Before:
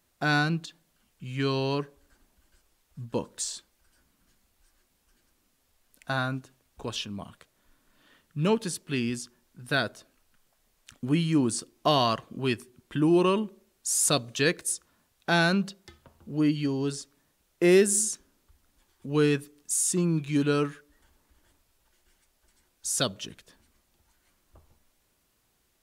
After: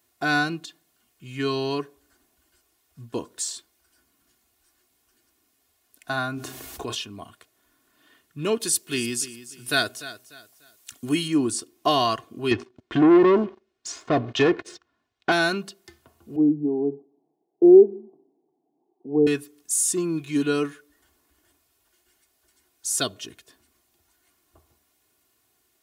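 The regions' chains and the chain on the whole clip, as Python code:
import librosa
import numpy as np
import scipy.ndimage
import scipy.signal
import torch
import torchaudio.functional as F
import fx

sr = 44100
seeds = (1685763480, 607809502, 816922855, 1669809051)

y = fx.chain(x, sr, fx.doubler(ms=33.0, db=-12.0),
    fx.env_flatten(amount_pct=70), at=(6.34, 6.95))
y = fx.chain(y, sr, fx.high_shelf(hz=3500.0, db=11.0),
    fx.echo_feedback(ms=296, feedback_pct=31, wet_db=-15.0), at=(8.6, 11.28))
y = fx.chain(y, sr, fx.env_lowpass_down(base_hz=1200.0, full_db=-20.5),
    fx.leveller(passes=3),
    fx.air_absorb(metres=160.0), at=(12.51, 15.32))
y = fx.chain(y, sr, fx.cheby1_bandpass(low_hz=150.0, high_hz=910.0, order=5),
    fx.low_shelf(hz=190.0, db=8.0),
    fx.comb(ms=2.5, depth=0.48), at=(16.36, 19.27))
y = scipy.signal.sosfilt(scipy.signal.butter(2, 99.0, 'highpass', fs=sr, output='sos'), y)
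y = fx.high_shelf(y, sr, hz=11000.0, db=6.5)
y = y + 0.6 * np.pad(y, (int(2.8 * sr / 1000.0), 0))[:len(y)]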